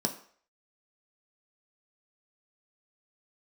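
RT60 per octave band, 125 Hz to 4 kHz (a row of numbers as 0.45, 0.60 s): 0.35, 0.40, 0.50, 0.50, 0.50, 0.50 s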